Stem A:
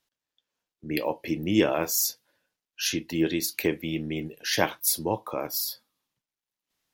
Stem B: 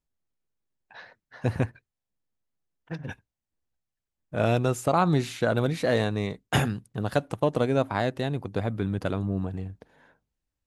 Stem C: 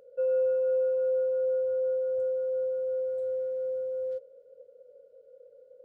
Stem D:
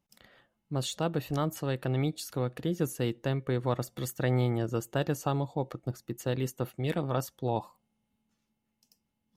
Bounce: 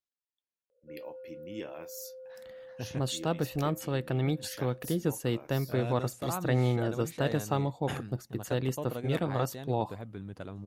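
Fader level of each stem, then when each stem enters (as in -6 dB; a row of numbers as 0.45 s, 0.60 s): -19.0 dB, -13.5 dB, -20.0 dB, 0.0 dB; 0.00 s, 1.35 s, 0.70 s, 2.25 s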